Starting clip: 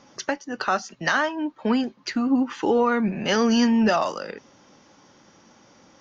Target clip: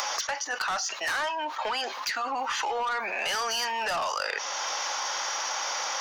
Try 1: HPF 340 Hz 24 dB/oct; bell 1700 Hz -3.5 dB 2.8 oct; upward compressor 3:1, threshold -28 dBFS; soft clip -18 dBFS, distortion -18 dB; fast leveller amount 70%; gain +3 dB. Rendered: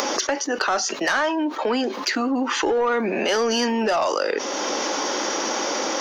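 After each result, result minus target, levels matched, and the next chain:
250 Hz band +18.0 dB; soft clip: distortion -9 dB
HPF 760 Hz 24 dB/oct; bell 1700 Hz -3.5 dB 2.8 oct; upward compressor 3:1, threshold -28 dBFS; soft clip -18 dBFS, distortion -20 dB; fast leveller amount 70%; gain +3 dB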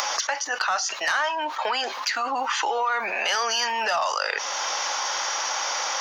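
soft clip: distortion -11 dB
HPF 760 Hz 24 dB/oct; bell 1700 Hz -3.5 dB 2.8 oct; upward compressor 3:1, threshold -28 dBFS; soft clip -28.5 dBFS, distortion -9 dB; fast leveller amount 70%; gain +3 dB

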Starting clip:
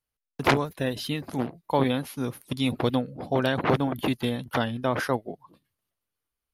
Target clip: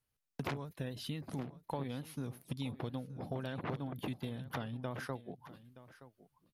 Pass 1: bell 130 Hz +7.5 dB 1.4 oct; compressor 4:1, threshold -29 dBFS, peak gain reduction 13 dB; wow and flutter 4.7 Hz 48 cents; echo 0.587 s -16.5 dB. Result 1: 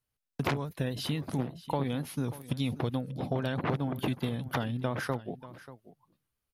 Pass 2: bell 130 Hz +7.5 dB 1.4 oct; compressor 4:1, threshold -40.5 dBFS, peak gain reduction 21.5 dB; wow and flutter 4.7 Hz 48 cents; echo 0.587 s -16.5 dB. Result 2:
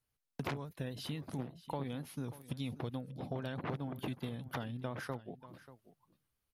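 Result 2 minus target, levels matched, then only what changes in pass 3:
echo 0.335 s early
change: echo 0.922 s -16.5 dB

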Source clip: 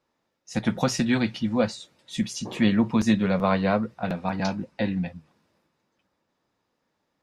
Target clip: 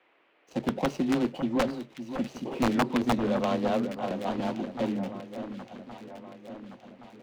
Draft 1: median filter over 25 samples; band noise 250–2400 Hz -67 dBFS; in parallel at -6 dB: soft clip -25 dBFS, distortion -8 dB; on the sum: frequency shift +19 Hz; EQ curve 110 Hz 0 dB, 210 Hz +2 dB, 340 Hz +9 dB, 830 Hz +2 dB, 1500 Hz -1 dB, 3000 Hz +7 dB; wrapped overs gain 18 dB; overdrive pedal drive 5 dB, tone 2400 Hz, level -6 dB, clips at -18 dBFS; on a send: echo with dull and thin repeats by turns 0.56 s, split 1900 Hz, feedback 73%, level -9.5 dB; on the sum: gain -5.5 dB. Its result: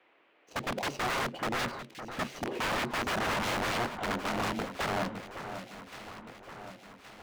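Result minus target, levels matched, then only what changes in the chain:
wrapped overs: distortion +26 dB
change: wrapped overs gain 7 dB

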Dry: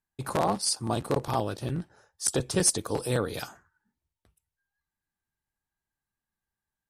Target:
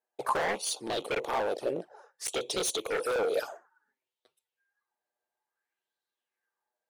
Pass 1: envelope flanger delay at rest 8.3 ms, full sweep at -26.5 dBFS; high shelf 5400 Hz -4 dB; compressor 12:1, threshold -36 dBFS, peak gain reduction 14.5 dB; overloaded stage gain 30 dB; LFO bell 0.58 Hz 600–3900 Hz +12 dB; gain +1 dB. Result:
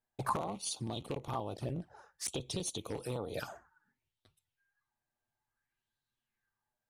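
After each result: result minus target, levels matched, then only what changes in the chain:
compressor: peak gain reduction +14.5 dB; 500 Hz band -3.5 dB
remove: compressor 12:1, threshold -36 dBFS, peak gain reduction 14.5 dB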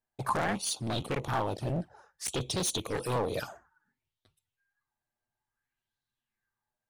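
500 Hz band -3.5 dB
add after envelope flanger: resonant high-pass 460 Hz, resonance Q 2.4

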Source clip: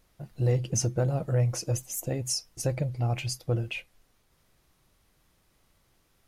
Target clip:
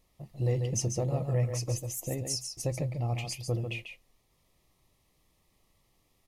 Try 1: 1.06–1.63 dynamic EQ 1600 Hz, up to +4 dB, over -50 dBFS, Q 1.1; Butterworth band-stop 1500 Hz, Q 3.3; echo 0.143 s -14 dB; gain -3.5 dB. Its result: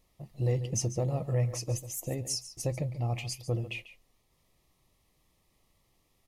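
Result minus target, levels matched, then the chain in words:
echo-to-direct -7.5 dB
1.06–1.63 dynamic EQ 1600 Hz, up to +4 dB, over -50 dBFS, Q 1.1; Butterworth band-stop 1500 Hz, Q 3.3; echo 0.143 s -6.5 dB; gain -3.5 dB

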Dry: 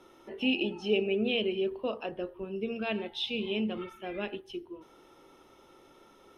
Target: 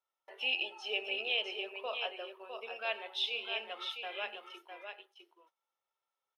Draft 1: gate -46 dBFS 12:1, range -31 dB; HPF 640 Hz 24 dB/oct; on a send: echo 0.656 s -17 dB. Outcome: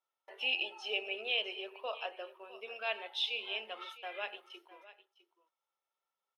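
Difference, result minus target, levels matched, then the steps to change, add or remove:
echo-to-direct -10.5 dB
change: echo 0.656 s -6.5 dB

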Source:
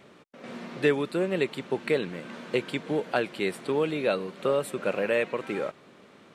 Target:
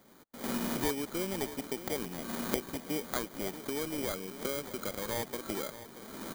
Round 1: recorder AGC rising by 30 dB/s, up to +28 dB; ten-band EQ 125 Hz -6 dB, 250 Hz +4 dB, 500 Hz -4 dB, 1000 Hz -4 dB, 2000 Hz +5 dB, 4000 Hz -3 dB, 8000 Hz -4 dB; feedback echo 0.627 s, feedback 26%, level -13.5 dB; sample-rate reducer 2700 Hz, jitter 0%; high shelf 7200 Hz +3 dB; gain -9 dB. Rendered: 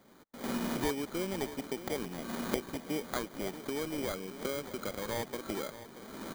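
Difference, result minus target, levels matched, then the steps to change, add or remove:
8000 Hz band -3.0 dB
change: high shelf 7200 Hz +10 dB

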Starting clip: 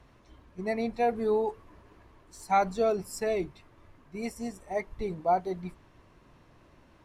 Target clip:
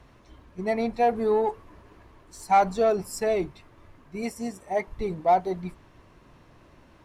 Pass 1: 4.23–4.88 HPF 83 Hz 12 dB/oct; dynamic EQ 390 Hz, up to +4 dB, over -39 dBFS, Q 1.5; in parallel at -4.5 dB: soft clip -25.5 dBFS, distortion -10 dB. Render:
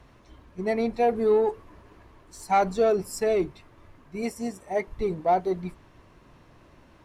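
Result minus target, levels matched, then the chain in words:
1000 Hz band -2.5 dB
4.23–4.88 HPF 83 Hz 12 dB/oct; dynamic EQ 830 Hz, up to +4 dB, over -39 dBFS, Q 1.5; in parallel at -4.5 dB: soft clip -25.5 dBFS, distortion -8 dB

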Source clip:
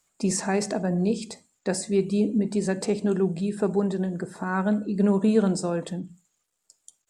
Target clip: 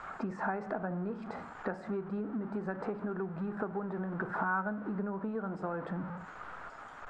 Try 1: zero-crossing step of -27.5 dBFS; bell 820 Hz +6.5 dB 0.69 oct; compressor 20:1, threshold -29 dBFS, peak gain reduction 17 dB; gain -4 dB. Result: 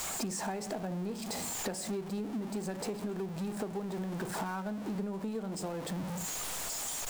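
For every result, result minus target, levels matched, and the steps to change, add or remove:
1000 Hz band -4.0 dB; zero-crossing step: distortion +6 dB
add after compressor: synth low-pass 1400 Hz, resonance Q 4.2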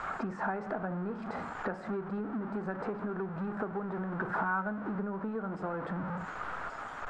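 zero-crossing step: distortion +6 dB
change: zero-crossing step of -34.5 dBFS

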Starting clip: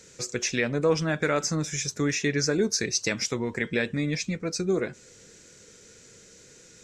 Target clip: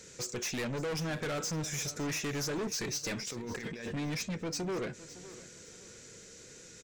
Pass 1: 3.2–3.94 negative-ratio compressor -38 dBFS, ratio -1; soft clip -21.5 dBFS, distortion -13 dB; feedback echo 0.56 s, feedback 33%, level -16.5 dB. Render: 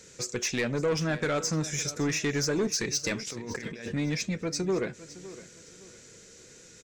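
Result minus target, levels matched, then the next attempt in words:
soft clip: distortion -8 dB
3.2–3.94 negative-ratio compressor -38 dBFS, ratio -1; soft clip -32.5 dBFS, distortion -5 dB; feedback echo 0.56 s, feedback 33%, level -16.5 dB

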